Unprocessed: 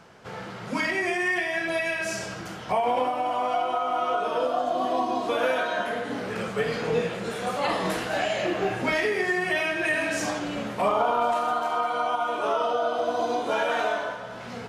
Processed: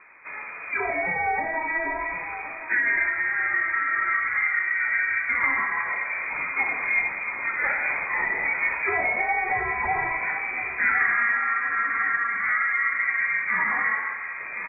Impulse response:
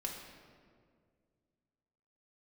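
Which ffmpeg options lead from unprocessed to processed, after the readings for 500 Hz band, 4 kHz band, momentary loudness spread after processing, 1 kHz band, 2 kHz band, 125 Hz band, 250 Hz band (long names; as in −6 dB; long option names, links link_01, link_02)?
−12.0 dB, below −40 dB, 6 LU, −2.5 dB, +8.0 dB, can't be measured, −12.0 dB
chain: -af "aecho=1:1:1061|2122|3183|4244:0.237|0.0949|0.0379|0.0152,lowpass=frequency=2200:width_type=q:width=0.5098,lowpass=frequency=2200:width_type=q:width=0.6013,lowpass=frequency=2200:width_type=q:width=0.9,lowpass=frequency=2200:width_type=q:width=2.563,afreqshift=-2600,volume=1dB"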